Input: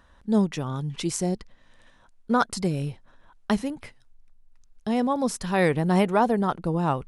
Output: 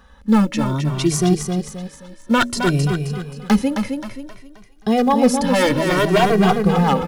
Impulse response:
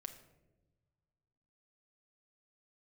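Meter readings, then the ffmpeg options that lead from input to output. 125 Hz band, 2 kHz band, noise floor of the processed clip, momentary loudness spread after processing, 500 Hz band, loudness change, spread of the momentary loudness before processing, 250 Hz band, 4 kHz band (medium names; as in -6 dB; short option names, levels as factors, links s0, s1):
+8.5 dB, +9.0 dB, -46 dBFS, 13 LU, +7.5 dB, +7.5 dB, 12 LU, +8.5 dB, +11.5 dB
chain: -filter_complex "[0:a]equalizer=f=8100:t=o:w=0.26:g=-4,bandreject=f=80.21:t=h:w=4,bandreject=f=160.42:t=h:w=4,bandreject=f=240.63:t=h:w=4,bandreject=f=320.84:t=h:w=4,bandreject=f=401.05:t=h:w=4,bandreject=f=481.26:t=h:w=4,bandreject=f=561.47:t=h:w=4,asplit=2[s0][s1];[s1]acrusher=bits=5:mode=log:mix=0:aa=0.000001,volume=0.282[s2];[s0][s2]amix=inputs=2:normalize=0,aeval=exprs='0.178*(abs(mod(val(0)/0.178+3,4)-2)-1)':c=same,aecho=1:1:264|528|792|1056|1320:0.501|0.216|0.0927|0.0398|0.0171,asplit=2[s3][s4];[s4]adelay=2,afreqshift=0.59[s5];[s3][s5]amix=inputs=2:normalize=1,volume=2.82"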